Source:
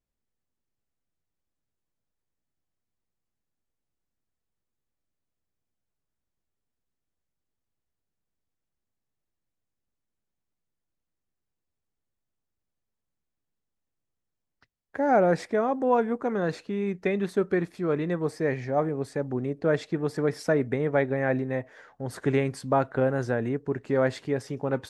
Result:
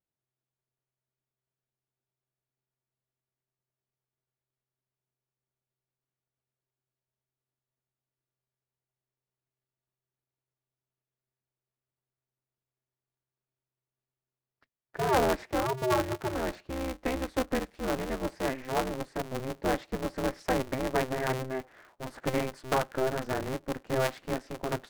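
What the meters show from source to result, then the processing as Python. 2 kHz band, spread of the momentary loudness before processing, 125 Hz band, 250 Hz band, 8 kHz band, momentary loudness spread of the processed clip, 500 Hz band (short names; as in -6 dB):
-2.5 dB, 7 LU, -6.0 dB, -5.5 dB, n/a, 8 LU, -5.5 dB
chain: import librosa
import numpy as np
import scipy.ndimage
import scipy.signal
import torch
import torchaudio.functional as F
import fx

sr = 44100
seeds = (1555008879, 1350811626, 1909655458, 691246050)

y = fx.lowpass(x, sr, hz=2200.0, slope=6)
y = fx.low_shelf(y, sr, hz=150.0, db=-10.0)
y = y * np.sign(np.sin(2.0 * np.pi * 130.0 * np.arange(len(y)) / sr))
y = F.gain(torch.from_numpy(y), -3.0).numpy()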